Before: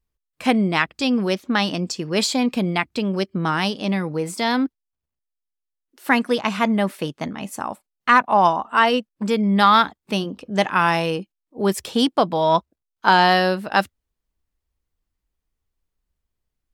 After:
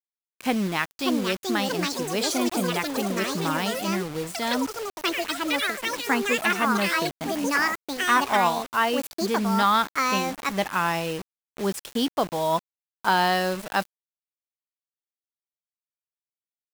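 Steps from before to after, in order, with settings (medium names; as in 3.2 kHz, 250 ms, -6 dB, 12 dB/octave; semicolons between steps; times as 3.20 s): ever faster or slower copies 731 ms, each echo +6 st, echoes 3; time-frequency box 4.56–4.96 s, 1.5–4.6 kHz -25 dB; bit crusher 5-bit; trim -6.5 dB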